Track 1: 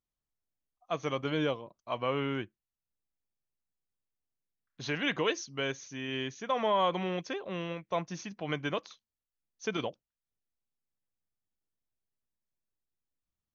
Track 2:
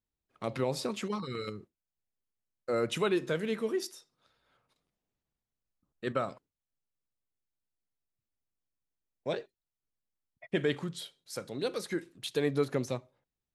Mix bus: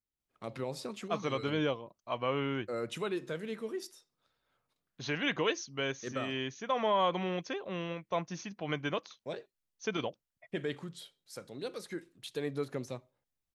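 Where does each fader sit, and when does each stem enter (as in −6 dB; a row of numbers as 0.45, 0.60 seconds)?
−1.0, −6.5 decibels; 0.20, 0.00 seconds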